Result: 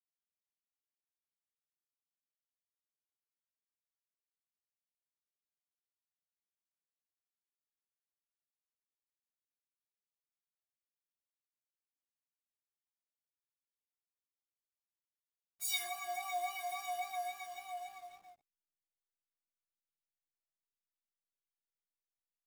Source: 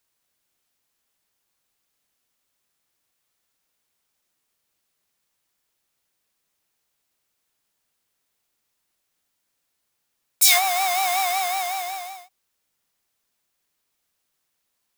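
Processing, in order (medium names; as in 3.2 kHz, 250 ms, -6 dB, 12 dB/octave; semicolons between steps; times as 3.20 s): inharmonic resonator 340 Hz, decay 0.22 s, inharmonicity 0.03; plain phase-vocoder stretch 1.5×; hysteresis with a dead band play -49.5 dBFS; trim -5.5 dB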